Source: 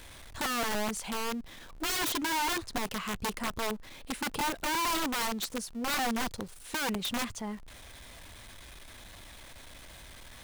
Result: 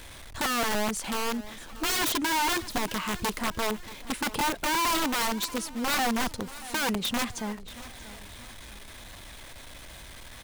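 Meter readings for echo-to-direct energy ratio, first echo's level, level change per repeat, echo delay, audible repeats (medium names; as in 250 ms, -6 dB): -16.0 dB, -17.0 dB, -7.5 dB, 634 ms, 3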